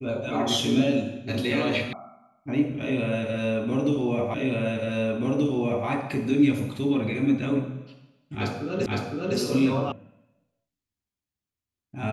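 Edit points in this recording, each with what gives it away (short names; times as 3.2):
1.93 sound cut off
4.34 repeat of the last 1.53 s
8.86 repeat of the last 0.51 s
9.92 sound cut off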